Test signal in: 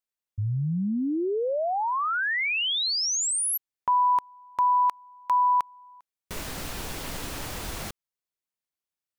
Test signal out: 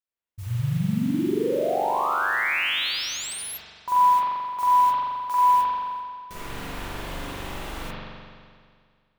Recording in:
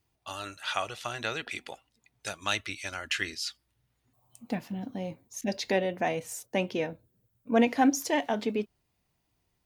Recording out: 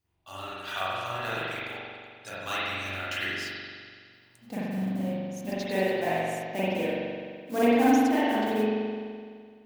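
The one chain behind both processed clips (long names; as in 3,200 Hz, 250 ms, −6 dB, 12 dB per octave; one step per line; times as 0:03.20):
noise that follows the level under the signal 15 dB
spring reverb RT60 2 s, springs 42 ms, chirp 55 ms, DRR −10 dB
level −8 dB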